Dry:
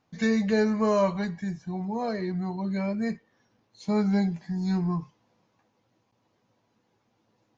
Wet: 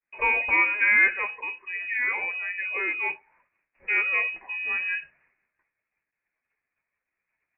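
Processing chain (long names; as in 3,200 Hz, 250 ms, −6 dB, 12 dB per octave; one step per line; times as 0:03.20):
downward expander −60 dBFS
high-pass filter 570 Hz 6 dB per octave
voice inversion scrambler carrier 2,700 Hz
level +7 dB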